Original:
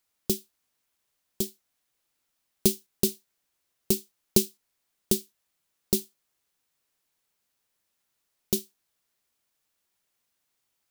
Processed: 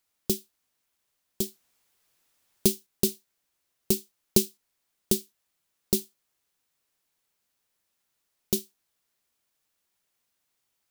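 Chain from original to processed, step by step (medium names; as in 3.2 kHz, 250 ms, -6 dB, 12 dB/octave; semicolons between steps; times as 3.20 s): 1.43–2.68 s: added noise white -73 dBFS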